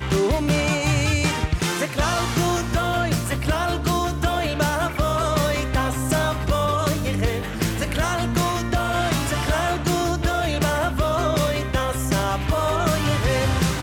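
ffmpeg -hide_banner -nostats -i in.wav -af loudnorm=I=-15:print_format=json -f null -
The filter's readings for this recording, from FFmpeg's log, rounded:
"input_i" : "-22.1",
"input_tp" : "-7.9",
"input_lra" : "0.9",
"input_thresh" : "-32.1",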